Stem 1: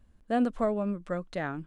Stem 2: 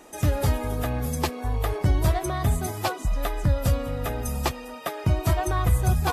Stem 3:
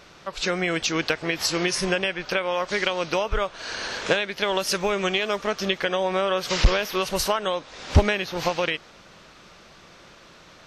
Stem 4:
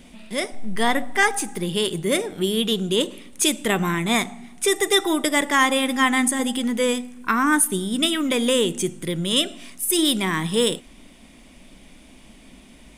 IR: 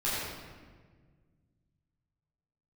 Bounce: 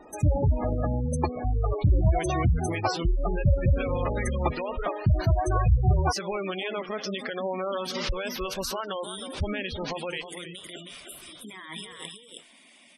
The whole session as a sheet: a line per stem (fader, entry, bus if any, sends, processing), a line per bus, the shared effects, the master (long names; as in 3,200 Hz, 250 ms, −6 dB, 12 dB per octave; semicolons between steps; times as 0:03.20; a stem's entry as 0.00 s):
−7.0 dB, 0.00 s, no send, no echo send, random phases in short frames
+0.5 dB, 0.00 s, no send, no echo send, no processing
−3.5 dB, 1.45 s, no send, echo send −10 dB, high-shelf EQ 4,100 Hz +4 dB; brickwall limiter −17.5 dBFS, peak gain reduction 10.5 dB
−8.5 dB, 1.30 s, no send, echo send −4 dB, high-pass filter 1,300 Hz 6 dB per octave; compressor whose output falls as the input rises −35 dBFS, ratio −1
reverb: not used
echo: single-tap delay 318 ms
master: gate on every frequency bin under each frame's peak −15 dB strong